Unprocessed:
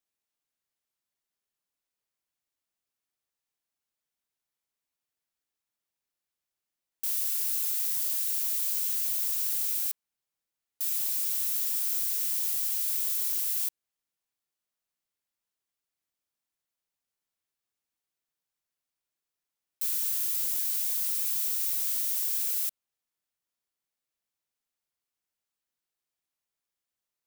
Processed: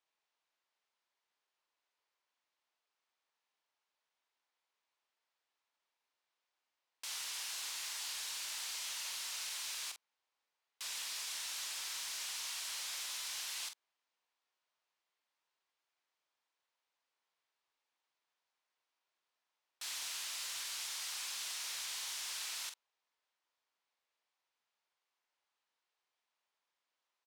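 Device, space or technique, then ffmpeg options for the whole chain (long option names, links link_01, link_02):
intercom: -filter_complex "[0:a]highpass=480,lowpass=4400,equalizer=frequency=960:width_type=o:width=0.43:gain=5,asoftclip=type=tanh:threshold=-38.5dB,asplit=2[link_01][link_02];[link_02]adelay=45,volume=-8dB[link_03];[link_01][link_03]amix=inputs=2:normalize=0,volume=5dB"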